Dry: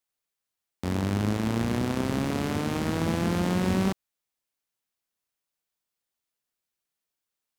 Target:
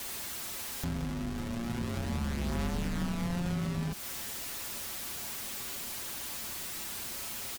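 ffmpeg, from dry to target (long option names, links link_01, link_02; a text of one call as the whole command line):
ffmpeg -i in.wav -af "aeval=exprs='val(0)+0.5*0.0316*sgn(val(0))':channel_layout=same,acompressor=threshold=-27dB:ratio=6,aecho=1:1:6.7:0.73,afreqshift=-350,volume=-4dB" out.wav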